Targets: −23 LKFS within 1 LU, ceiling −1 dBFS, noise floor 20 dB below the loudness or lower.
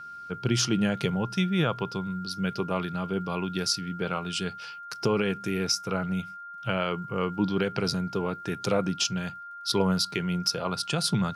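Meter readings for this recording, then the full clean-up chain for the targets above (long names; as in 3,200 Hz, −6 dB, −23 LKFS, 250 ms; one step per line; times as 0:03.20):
crackle rate 43 per second; interfering tone 1,400 Hz; level of the tone −39 dBFS; integrated loudness −28.5 LKFS; sample peak −12.5 dBFS; target loudness −23.0 LKFS
→ click removal
notch filter 1,400 Hz, Q 30
level +5.5 dB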